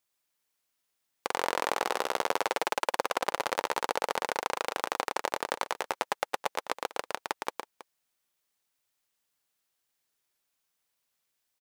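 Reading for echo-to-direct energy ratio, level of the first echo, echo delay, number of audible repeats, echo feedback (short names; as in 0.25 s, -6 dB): -4.0 dB, -4.5 dB, 0.112 s, 2, no steady repeat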